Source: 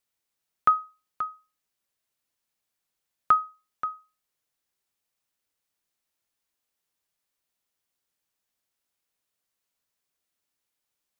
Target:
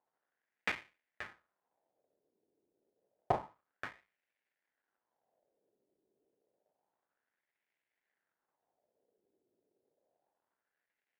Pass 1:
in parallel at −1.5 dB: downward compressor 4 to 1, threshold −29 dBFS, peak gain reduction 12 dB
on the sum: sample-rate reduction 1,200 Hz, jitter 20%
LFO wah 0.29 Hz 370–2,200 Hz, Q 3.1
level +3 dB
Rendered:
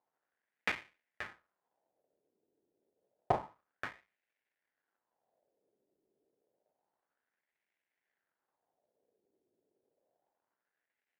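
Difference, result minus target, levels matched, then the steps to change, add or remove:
downward compressor: peak gain reduction −8.5 dB
change: downward compressor 4 to 1, threshold −40.5 dBFS, peak gain reduction 20.5 dB

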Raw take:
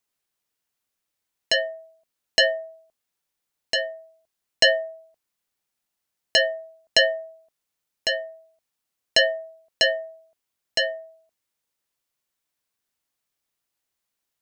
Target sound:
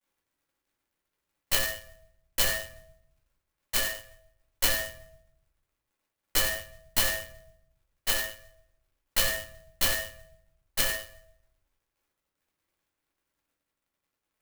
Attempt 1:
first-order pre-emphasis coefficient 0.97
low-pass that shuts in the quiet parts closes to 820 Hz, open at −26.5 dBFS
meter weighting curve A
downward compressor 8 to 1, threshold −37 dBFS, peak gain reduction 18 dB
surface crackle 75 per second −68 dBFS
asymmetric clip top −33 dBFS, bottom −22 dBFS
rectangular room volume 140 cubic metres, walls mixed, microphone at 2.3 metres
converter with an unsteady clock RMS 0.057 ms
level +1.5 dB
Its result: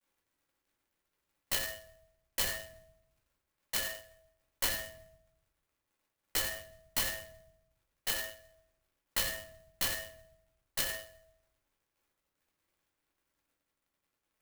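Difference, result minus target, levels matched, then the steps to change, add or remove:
downward compressor: peak gain reduction +10 dB
change: downward compressor 8 to 1, threshold −25.5 dBFS, peak gain reduction 8 dB

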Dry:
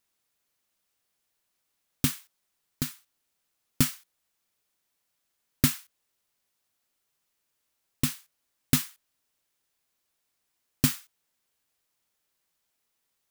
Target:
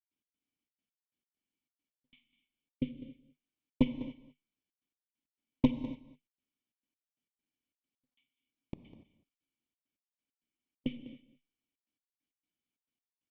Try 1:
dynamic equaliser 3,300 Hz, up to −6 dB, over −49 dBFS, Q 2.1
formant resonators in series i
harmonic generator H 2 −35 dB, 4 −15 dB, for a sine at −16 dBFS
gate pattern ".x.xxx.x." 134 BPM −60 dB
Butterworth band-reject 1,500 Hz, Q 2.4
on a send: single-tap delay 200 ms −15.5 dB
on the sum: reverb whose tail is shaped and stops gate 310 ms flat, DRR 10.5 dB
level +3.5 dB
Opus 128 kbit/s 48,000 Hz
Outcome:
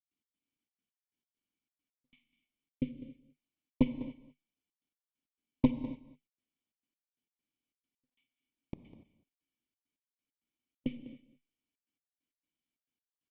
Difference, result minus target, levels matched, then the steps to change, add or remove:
4,000 Hz band −5.0 dB
remove: dynamic equaliser 3,300 Hz, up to −6 dB, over −49 dBFS, Q 2.1

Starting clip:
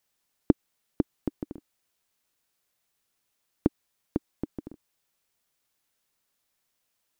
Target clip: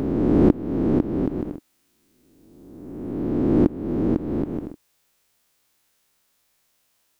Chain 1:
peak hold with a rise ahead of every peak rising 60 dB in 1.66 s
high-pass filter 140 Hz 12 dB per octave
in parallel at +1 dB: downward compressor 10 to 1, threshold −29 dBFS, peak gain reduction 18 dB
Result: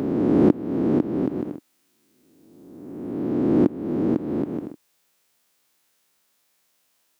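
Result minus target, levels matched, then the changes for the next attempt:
125 Hz band −3.0 dB
remove: high-pass filter 140 Hz 12 dB per octave

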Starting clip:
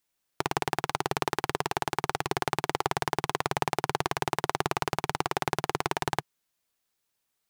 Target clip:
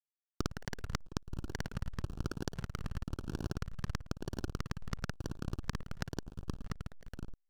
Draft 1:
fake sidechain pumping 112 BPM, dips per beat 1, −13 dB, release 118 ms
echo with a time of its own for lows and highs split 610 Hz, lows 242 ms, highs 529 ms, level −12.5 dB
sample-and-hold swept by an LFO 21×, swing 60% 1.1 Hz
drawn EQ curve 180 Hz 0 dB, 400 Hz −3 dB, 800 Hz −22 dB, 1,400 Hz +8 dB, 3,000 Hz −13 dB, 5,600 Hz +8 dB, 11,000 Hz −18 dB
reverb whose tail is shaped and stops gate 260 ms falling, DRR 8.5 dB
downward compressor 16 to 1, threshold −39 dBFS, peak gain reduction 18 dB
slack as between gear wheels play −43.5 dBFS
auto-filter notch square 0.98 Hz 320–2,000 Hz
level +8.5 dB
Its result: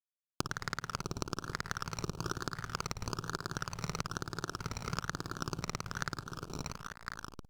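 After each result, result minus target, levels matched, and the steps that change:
sample-and-hold swept by an LFO: distortion −12 dB; slack as between gear wheels: distortion −6 dB
change: sample-and-hold swept by an LFO 48×, swing 60% 1.1 Hz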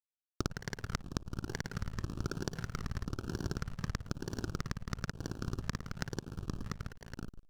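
slack as between gear wheels: distortion −6 dB
change: slack as between gear wheels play −36.5 dBFS

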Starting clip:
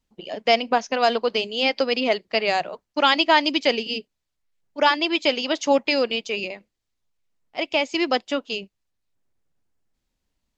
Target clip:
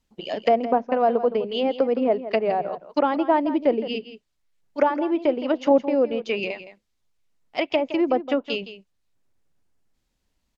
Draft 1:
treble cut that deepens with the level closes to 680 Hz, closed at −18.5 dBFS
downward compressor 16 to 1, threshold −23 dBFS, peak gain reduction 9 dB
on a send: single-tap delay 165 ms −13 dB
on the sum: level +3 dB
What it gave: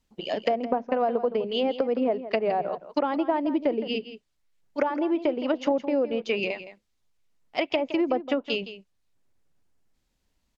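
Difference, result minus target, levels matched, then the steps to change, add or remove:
downward compressor: peak gain reduction +9 dB
remove: downward compressor 16 to 1, threshold −23 dBFS, peak gain reduction 9 dB

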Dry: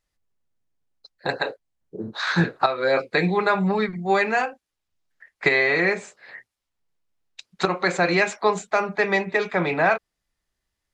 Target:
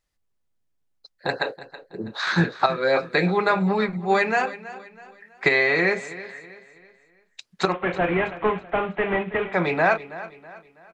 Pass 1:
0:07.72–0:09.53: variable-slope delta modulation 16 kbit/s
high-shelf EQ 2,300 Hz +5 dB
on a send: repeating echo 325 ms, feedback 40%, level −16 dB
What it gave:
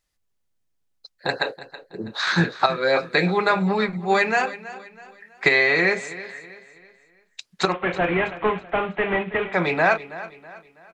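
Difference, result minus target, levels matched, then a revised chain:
4,000 Hz band +2.5 dB
0:07.72–0:09.53: variable-slope delta modulation 16 kbit/s
on a send: repeating echo 325 ms, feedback 40%, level −16 dB

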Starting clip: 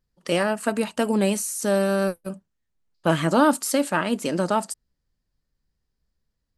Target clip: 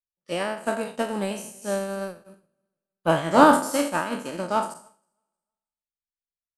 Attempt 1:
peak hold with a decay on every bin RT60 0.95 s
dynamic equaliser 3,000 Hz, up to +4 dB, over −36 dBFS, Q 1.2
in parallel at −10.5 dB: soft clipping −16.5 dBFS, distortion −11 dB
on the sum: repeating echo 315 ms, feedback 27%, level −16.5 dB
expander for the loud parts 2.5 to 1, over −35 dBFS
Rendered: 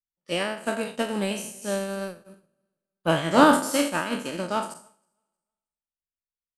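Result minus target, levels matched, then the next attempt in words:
4,000 Hz band +5.0 dB
peak hold with a decay on every bin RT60 0.95 s
dynamic equaliser 860 Hz, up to +4 dB, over −36 dBFS, Q 1.2
in parallel at −10.5 dB: soft clipping −16.5 dBFS, distortion −9 dB
on the sum: repeating echo 315 ms, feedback 27%, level −16.5 dB
expander for the loud parts 2.5 to 1, over −35 dBFS

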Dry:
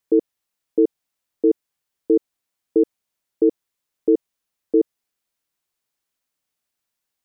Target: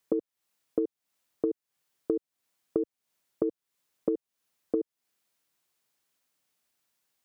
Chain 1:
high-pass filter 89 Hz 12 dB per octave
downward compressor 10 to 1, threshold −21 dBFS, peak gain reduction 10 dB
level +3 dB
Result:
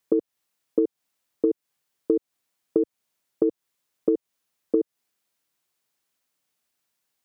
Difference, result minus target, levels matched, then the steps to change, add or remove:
downward compressor: peak gain reduction −7 dB
change: downward compressor 10 to 1, threshold −29 dBFS, peak gain reduction 17.5 dB

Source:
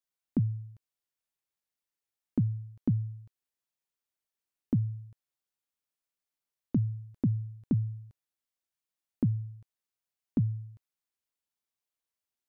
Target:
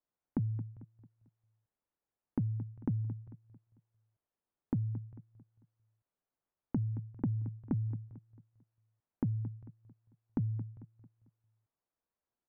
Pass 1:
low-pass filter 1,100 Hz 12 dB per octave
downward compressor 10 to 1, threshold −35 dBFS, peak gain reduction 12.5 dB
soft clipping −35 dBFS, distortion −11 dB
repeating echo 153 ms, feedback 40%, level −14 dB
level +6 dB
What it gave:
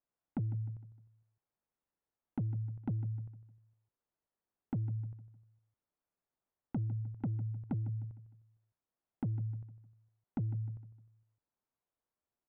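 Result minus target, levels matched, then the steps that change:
echo 70 ms early; soft clipping: distortion +7 dB
change: soft clipping −26.5 dBFS, distortion −18 dB
change: repeating echo 223 ms, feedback 40%, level −14 dB

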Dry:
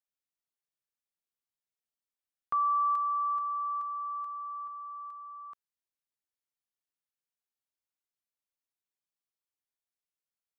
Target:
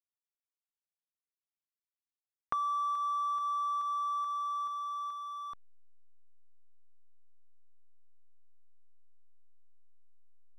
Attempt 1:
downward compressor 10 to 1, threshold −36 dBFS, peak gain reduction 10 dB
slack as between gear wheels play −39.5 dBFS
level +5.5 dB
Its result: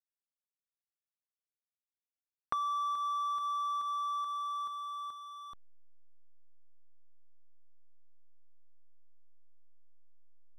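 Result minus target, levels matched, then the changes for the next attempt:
slack as between gear wheels: distortion +6 dB
change: slack as between gear wheels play −47.5 dBFS

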